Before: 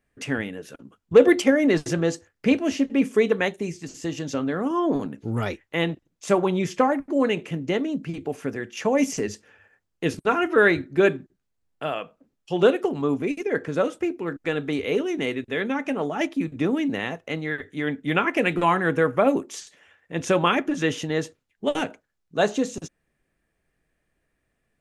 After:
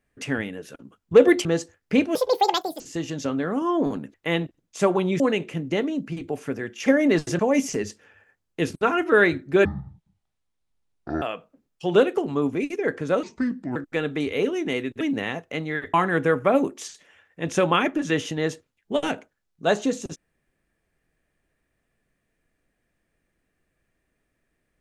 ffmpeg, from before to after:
-filter_complex "[0:a]asplit=14[s0][s1][s2][s3][s4][s5][s6][s7][s8][s9][s10][s11][s12][s13];[s0]atrim=end=1.452[s14];[s1]atrim=start=1.978:end=2.684[s15];[s2]atrim=start=2.68:end=3.89,asetpts=PTS-STARTPTS,asetrate=82026,aresample=44100[s16];[s3]atrim=start=3.886:end=5.232[s17];[s4]atrim=start=5.618:end=6.682[s18];[s5]atrim=start=7.168:end=8.832[s19];[s6]atrim=start=1.448:end=1.982[s20];[s7]atrim=start=8.828:end=11.094[s21];[s8]atrim=start=11.09:end=11.89,asetpts=PTS-STARTPTS,asetrate=22491,aresample=44100,atrim=end_sample=69176,asetpts=PTS-STARTPTS[s22];[s9]atrim=start=11.886:end=13.904[s23];[s10]atrim=start=13.9:end=14.28,asetpts=PTS-STARTPTS,asetrate=31752,aresample=44100[s24];[s11]atrim=start=14.276:end=15.532[s25];[s12]atrim=start=16.768:end=17.702[s26];[s13]atrim=start=18.658[s27];[s14][s15]acrossfade=d=0.004:c1=hsin:c2=hsin[s28];[s28][s16]acrossfade=d=0.004:c1=hsin:c2=hsin[s29];[s29][s17]acrossfade=d=0.004:c1=hsin:c2=hsin[s30];[s30][s18]acrossfade=d=0.004:c1=hsin:c2=hsin[s31];[s31][s19]acrossfade=d=0.004:c1=hsin:c2=hsin[s32];[s32][s20]acrossfade=d=0.004:c1=hsin:c2=hsin[s33];[s33][s21]acrossfade=d=0.004:c1=hsin:c2=hsin[s34];[s34][s22]acrossfade=d=0.004:c1=hsin:c2=hsin[s35];[s35][s23]acrossfade=d=0.004:c1=hsin:c2=hsin[s36];[s36][s24]acrossfade=d=0.004:c1=hsin:c2=hsin[s37];[s37][s25]acrossfade=d=0.004:c1=hsin:c2=hsin[s38];[s38][s26]acrossfade=d=0.004:c1=hsin:c2=hsin[s39];[s39][s27]acrossfade=d=0.004:c1=hsin:c2=hsin"

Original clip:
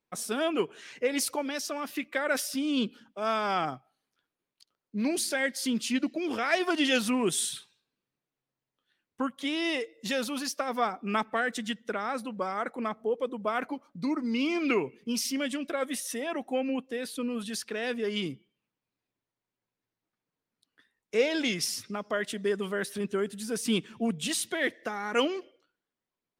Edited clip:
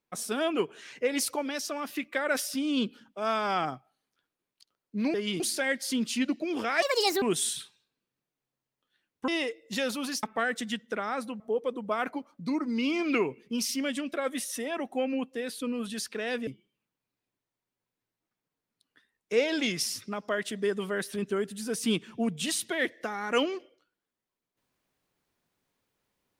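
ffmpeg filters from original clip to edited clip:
-filter_complex "[0:a]asplit=9[s0][s1][s2][s3][s4][s5][s6][s7][s8];[s0]atrim=end=5.142[s9];[s1]atrim=start=18.028:end=18.292[s10];[s2]atrim=start=5.138:end=6.564[s11];[s3]atrim=start=6.56:end=7.18,asetpts=PTS-STARTPTS,asetrate=68355,aresample=44100[s12];[s4]atrim=start=7.176:end=9.242[s13];[s5]atrim=start=9.608:end=10.562[s14];[s6]atrim=start=11.198:end=12.372[s15];[s7]atrim=start=12.958:end=18.032[s16];[s8]atrim=start=18.288[s17];[s9][s10]acrossfade=d=0.004:c1=hsin:c2=hsin[s18];[s18][s11]acrossfade=d=0.004:c1=hsin:c2=hsin[s19];[s19][s12]acrossfade=d=0.004:c1=hsin:c2=hsin[s20];[s20][s13]acrossfade=d=0.004:c1=hsin:c2=hsin[s21];[s21][s14]acrossfade=d=0.004:c1=hsin:c2=hsin[s22];[s22][s15]acrossfade=d=0.004:c1=hsin:c2=hsin[s23];[s23][s16]acrossfade=d=0.004:c1=hsin:c2=hsin[s24];[s24][s17]acrossfade=d=0.004:c1=hsin:c2=hsin"

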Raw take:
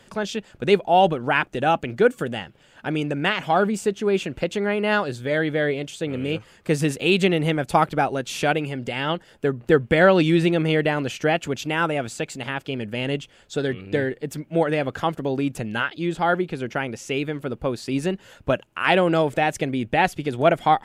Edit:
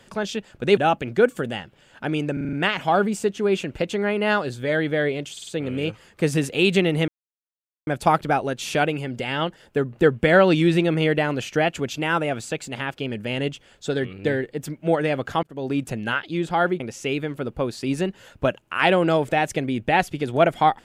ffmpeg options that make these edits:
-filter_complex "[0:a]asplit=13[s0][s1][s2][s3][s4][s5][s6][s7][s8][s9][s10][s11][s12];[s0]atrim=end=0.772[s13];[s1]atrim=start=1.588:end=3.192[s14];[s2]atrim=start=3.148:end=3.192[s15];[s3]atrim=start=3.148:end=3.192[s16];[s4]atrim=start=3.148:end=3.192[s17];[s5]atrim=start=3.148:end=3.192[s18];[s6]atrim=start=3.148:end=5.992[s19];[s7]atrim=start=5.938:end=5.992[s20];[s8]atrim=start=5.938:end=5.992[s21];[s9]atrim=start=5.938:end=7.55,asetpts=PTS-STARTPTS,afade=t=out:st=1.608:d=0.004:c=hsin,apad=pad_dur=0.79[s22];[s10]atrim=start=7.55:end=15.11,asetpts=PTS-STARTPTS,afade=t=in:d=0.004:c=hsin,afade=t=out:st=7.556:d=0.004:c=hsin[s23];[s11]atrim=start=15.11:end=16.482,asetpts=PTS-STARTPTS,afade=t=in:d=0.32[s24];[s12]atrim=start=16.848[s25];[s13][s14]acrossfade=d=0.004:c1=hsin:c2=hsin[s26];[s26][s15]acrossfade=d=0.004:c1=hsin:c2=hsin[s27];[s27][s16]acrossfade=d=0.004:c1=hsin:c2=hsin[s28];[s28][s17]acrossfade=d=0.004:c1=hsin:c2=hsin[s29];[s29][s18]acrossfade=d=0.004:c1=hsin:c2=hsin[s30];[s30][s19]acrossfade=d=0.004:c1=hsin:c2=hsin[s31];[s31][s20]acrossfade=d=0.004:c1=hsin:c2=hsin[s32];[s32][s21]acrossfade=d=0.004:c1=hsin:c2=hsin[s33];[s22][s23][s24]concat=n=3:v=0:a=1[s34];[s33][s34]acrossfade=d=0.004:c1=hsin:c2=hsin[s35];[s35][s25]acrossfade=d=0.004:c1=hsin:c2=hsin"

